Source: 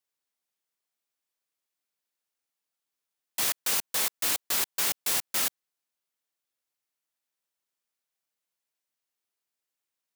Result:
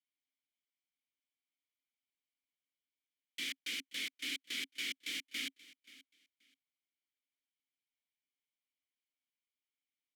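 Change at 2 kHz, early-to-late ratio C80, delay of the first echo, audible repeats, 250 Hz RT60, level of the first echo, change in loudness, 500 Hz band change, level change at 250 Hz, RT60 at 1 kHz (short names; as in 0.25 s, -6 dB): -5.5 dB, none, 0.53 s, 2, none, -19.0 dB, -13.5 dB, -20.0 dB, -5.5 dB, none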